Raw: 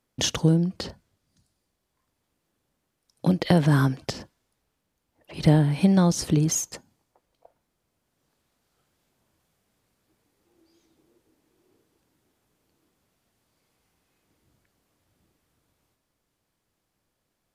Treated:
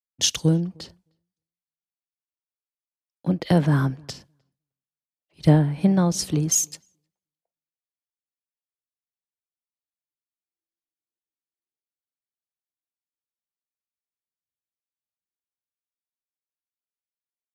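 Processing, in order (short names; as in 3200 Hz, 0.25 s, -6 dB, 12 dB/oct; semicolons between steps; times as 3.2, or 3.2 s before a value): darkening echo 0.309 s, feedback 31%, low-pass 1600 Hz, level -21 dB; three-band expander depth 100%; gain -3 dB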